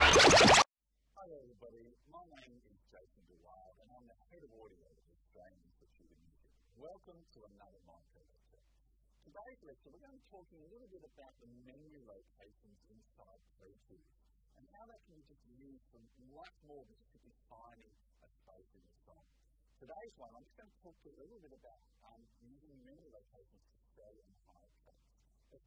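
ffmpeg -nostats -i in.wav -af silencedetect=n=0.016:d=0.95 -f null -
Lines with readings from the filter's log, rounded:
silence_start: 0.62
silence_end: 25.66 | silence_duration: 25.04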